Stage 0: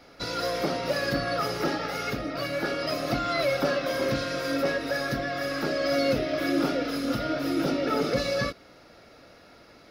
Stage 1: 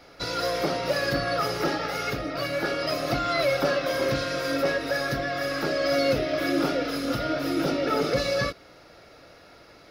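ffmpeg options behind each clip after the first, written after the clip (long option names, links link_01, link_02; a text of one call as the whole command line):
ffmpeg -i in.wav -af "equalizer=frequency=230:width=3.3:gain=-6.5,volume=2dB" out.wav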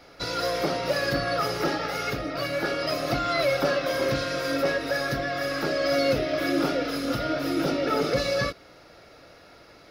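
ffmpeg -i in.wav -af anull out.wav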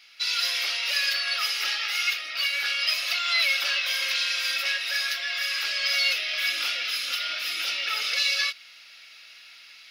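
ffmpeg -i in.wav -af "aeval=exprs='val(0)+0.0126*(sin(2*PI*60*n/s)+sin(2*PI*2*60*n/s)/2+sin(2*PI*3*60*n/s)/3+sin(2*PI*4*60*n/s)/4+sin(2*PI*5*60*n/s)/5)':channel_layout=same,dynaudnorm=framelen=150:gausssize=3:maxgain=5dB,highpass=frequency=2700:width_type=q:width=2.5" out.wav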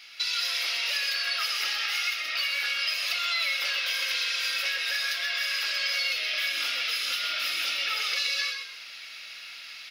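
ffmpeg -i in.wav -filter_complex "[0:a]acompressor=threshold=-33dB:ratio=4,asplit=2[link_01][link_02];[link_02]asplit=4[link_03][link_04][link_05][link_06];[link_03]adelay=129,afreqshift=-47,volume=-6.5dB[link_07];[link_04]adelay=258,afreqshift=-94,volume=-16.7dB[link_08];[link_05]adelay=387,afreqshift=-141,volume=-26.8dB[link_09];[link_06]adelay=516,afreqshift=-188,volume=-37dB[link_10];[link_07][link_08][link_09][link_10]amix=inputs=4:normalize=0[link_11];[link_01][link_11]amix=inputs=2:normalize=0,volume=5dB" out.wav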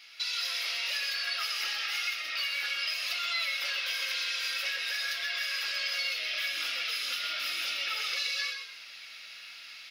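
ffmpeg -i in.wav -af "flanger=delay=5.9:depth=5.5:regen=-52:speed=0.59:shape=sinusoidal" out.wav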